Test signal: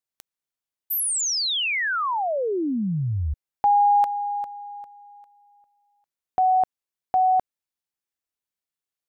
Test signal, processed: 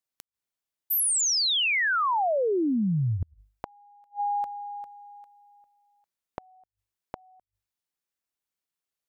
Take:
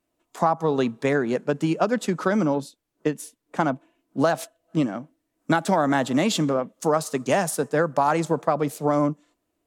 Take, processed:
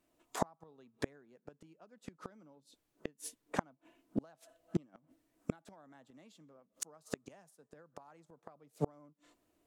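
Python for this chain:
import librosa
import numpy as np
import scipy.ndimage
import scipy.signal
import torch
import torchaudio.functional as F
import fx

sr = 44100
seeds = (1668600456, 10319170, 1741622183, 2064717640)

y = fx.hum_notches(x, sr, base_hz=50, count=2)
y = fx.gate_flip(y, sr, shuts_db=-20.0, range_db=-38)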